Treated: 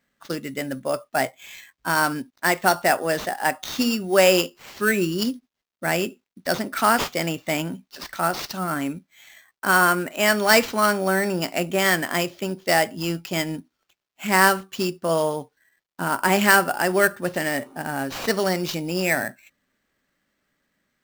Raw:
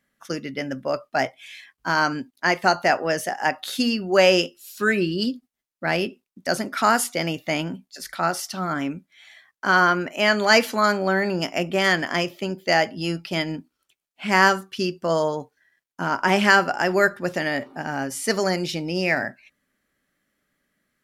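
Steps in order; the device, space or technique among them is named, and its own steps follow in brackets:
early companding sampler (sample-rate reduction 10,000 Hz, jitter 0%; log-companded quantiser 8 bits)

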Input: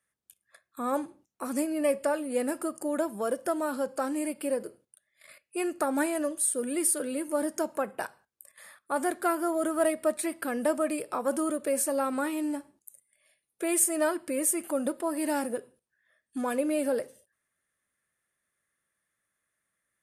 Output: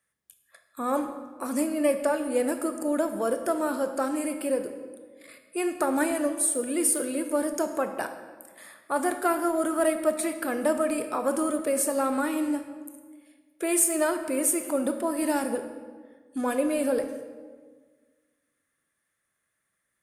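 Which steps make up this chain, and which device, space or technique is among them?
saturated reverb return (on a send at −7 dB: convolution reverb RT60 1.6 s, pre-delay 21 ms + soft clipping −18.5 dBFS, distortion −23 dB)
on the sum: level +2 dB

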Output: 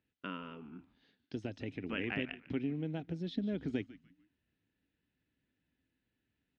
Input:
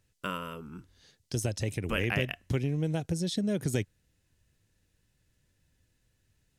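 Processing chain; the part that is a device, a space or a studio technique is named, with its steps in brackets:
frequency-shifting delay pedal into a guitar cabinet (echo with shifted repeats 147 ms, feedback 32%, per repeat −140 Hz, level −17 dB; loudspeaker in its box 86–3,500 Hz, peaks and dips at 90 Hz −9 dB, 130 Hz −8 dB, 270 Hz +9 dB, 550 Hz −5 dB, 1,100 Hz −5 dB)
level −7 dB

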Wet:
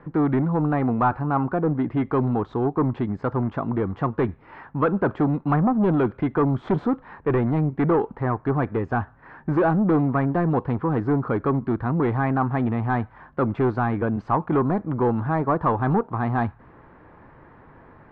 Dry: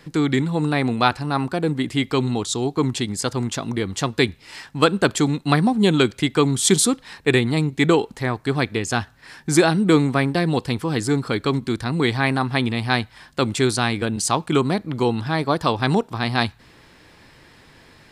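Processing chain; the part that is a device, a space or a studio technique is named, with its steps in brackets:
overdriven synthesiser ladder filter (soft clipping −17.5 dBFS, distortion −10 dB; transistor ladder low-pass 1,500 Hz, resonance 30%)
level +8.5 dB

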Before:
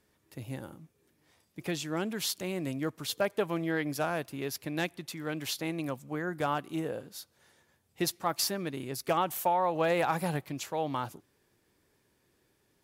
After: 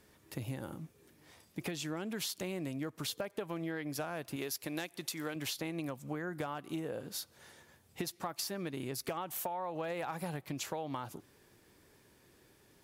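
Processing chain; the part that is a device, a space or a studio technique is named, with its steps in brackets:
0:04.36–0:05.36: bass and treble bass −7 dB, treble +6 dB
serial compression, peaks first (downward compressor, threshold −37 dBFS, peak gain reduction 13.5 dB; downward compressor 2 to 1, threshold −46 dBFS, peak gain reduction 7 dB)
level +7 dB

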